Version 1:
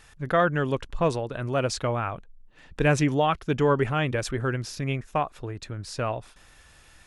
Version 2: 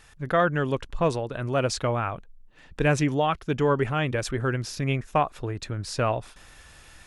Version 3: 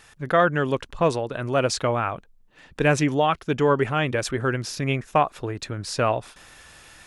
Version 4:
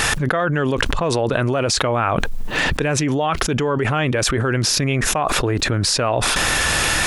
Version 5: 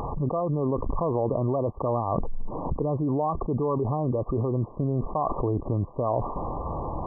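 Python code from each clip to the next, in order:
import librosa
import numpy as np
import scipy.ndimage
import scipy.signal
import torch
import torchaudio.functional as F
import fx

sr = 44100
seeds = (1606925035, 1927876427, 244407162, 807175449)

y1 = fx.rider(x, sr, range_db=4, speed_s=2.0)
y2 = fx.low_shelf(y1, sr, hz=87.0, db=-11.5)
y2 = y2 * 10.0 ** (3.5 / 20.0)
y3 = fx.env_flatten(y2, sr, amount_pct=100)
y3 = y3 * 10.0 ** (-3.5 / 20.0)
y4 = 10.0 ** (-4.5 / 20.0) * np.tanh(y3 / 10.0 ** (-4.5 / 20.0))
y4 = fx.brickwall_lowpass(y4, sr, high_hz=1200.0)
y4 = y4 * 10.0 ** (-5.5 / 20.0)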